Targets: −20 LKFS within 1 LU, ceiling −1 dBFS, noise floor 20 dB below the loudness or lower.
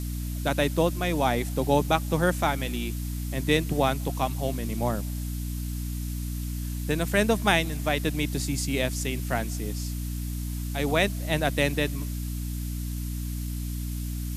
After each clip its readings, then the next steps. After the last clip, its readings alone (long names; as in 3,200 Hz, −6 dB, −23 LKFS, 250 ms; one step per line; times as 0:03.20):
mains hum 60 Hz; hum harmonics up to 300 Hz; level of the hum −29 dBFS; background noise floor −32 dBFS; target noise floor −48 dBFS; integrated loudness −27.5 LKFS; sample peak −5.5 dBFS; target loudness −20.0 LKFS
→ mains-hum notches 60/120/180/240/300 Hz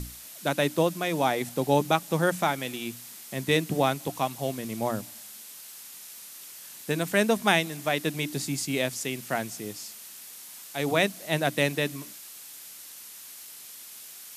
mains hum none found; background noise floor −45 dBFS; target noise floor −48 dBFS
→ noise reduction from a noise print 6 dB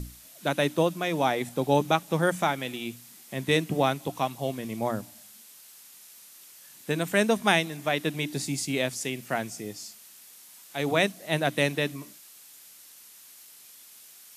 background noise floor −51 dBFS; integrated loudness −27.5 LKFS; sample peak −5.0 dBFS; target loudness −20.0 LKFS
→ level +7.5 dB
brickwall limiter −1 dBFS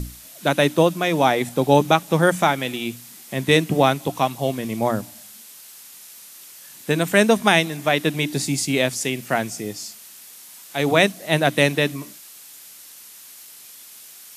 integrated loudness −20.0 LKFS; sample peak −1.0 dBFS; background noise floor −44 dBFS